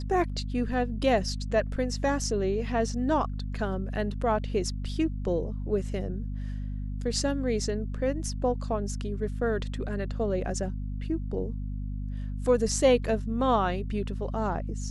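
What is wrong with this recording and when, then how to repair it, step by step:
hum 50 Hz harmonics 5 -33 dBFS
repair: de-hum 50 Hz, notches 5

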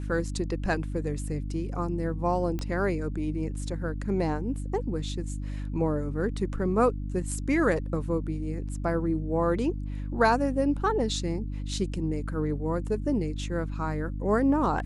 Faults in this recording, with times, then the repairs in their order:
hum 50 Hz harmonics 6 -33 dBFS
2.59 s: pop -20 dBFS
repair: de-click; de-hum 50 Hz, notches 6

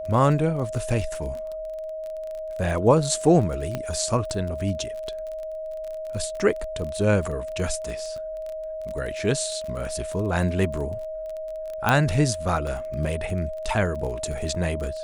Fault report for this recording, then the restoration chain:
crackle 27 per s -31 dBFS
whine 630 Hz -30 dBFS
3.75 s: pop -14 dBFS
11.89 s: pop -6 dBFS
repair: de-click; band-stop 630 Hz, Q 30

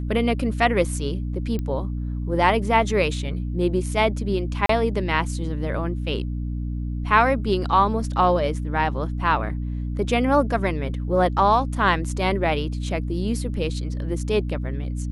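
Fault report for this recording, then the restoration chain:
hum 60 Hz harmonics 5 -27 dBFS
1.59 s: pop -17 dBFS
4.66–4.69 s: dropout 33 ms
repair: de-click; de-hum 60 Hz, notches 5; interpolate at 4.66 s, 33 ms

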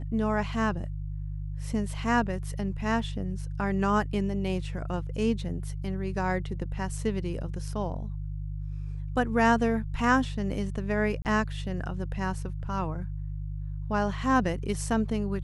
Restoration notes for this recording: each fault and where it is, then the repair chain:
hum 50 Hz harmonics 3 -34 dBFS
11.22–11.25 s: dropout 29 ms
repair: de-hum 50 Hz, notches 3; interpolate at 11.22 s, 29 ms

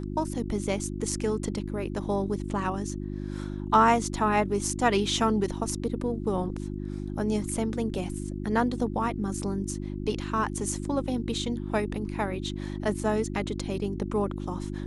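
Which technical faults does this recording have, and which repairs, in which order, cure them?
hum 50 Hz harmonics 7 -34 dBFS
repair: de-hum 50 Hz, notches 7

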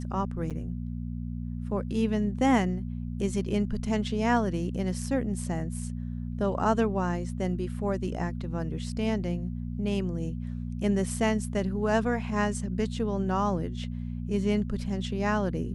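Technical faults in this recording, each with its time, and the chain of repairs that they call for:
hum 60 Hz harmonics 4 -34 dBFS
0.50–0.51 s: dropout 7.2 ms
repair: de-hum 60 Hz, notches 4; interpolate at 0.50 s, 7.2 ms

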